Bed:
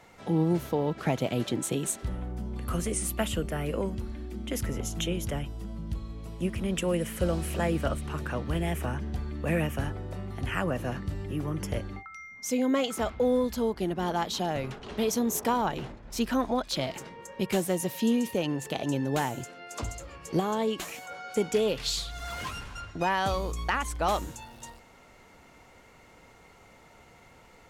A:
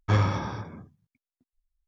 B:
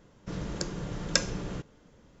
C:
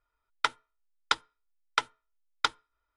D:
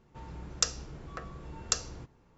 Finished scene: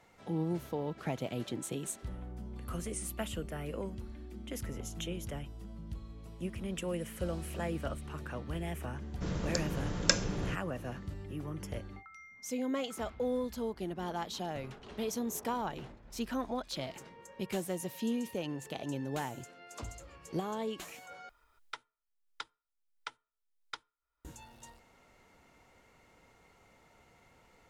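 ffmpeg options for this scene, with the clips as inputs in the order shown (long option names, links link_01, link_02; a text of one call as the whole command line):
ffmpeg -i bed.wav -i cue0.wav -i cue1.wav -i cue2.wav -filter_complex "[0:a]volume=-8.5dB[link_01];[3:a]acompressor=mode=upward:threshold=-26dB:ratio=2.5:attack=5.9:release=461:knee=2.83:detection=peak[link_02];[link_01]asplit=2[link_03][link_04];[link_03]atrim=end=21.294[link_05];[link_02]atrim=end=2.96,asetpts=PTS-STARTPTS,volume=-17dB[link_06];[link_04]atrim=start=24.246[link_07];[2:a]atrim=end=2.2,asetpts=PTS-STARTPTS,volume=-0.5dB,afade=type=in:duration=0.004:curve=hsin,afade=type=out:start_time=2.196:duration=0.004:curve=hsin,adelay=8940[link_08];[link_05][link_06]acrossfade=duration=0.004:curve1=hsin:curve2=hsin[link_09];[link_09][link_07]acrossfade=duration=0.004:curve1=hsin:curve2=hsin[link_10];[link_10][link_08]amix=inputs=2:normalize=0" out.wav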